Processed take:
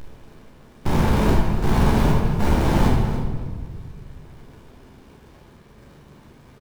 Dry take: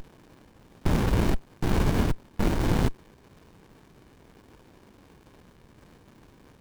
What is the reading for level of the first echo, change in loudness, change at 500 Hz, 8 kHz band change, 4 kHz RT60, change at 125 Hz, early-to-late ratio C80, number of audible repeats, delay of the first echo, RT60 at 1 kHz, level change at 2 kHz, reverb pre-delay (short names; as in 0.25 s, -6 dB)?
-12.0 dB, +6.0 dB, +6.5 dB, +4.0 dB, 1.2 s, +7.0 dB, 3.0 dB, 1, 0.283 s, 1.5 s, +5.5 dB, 14 ms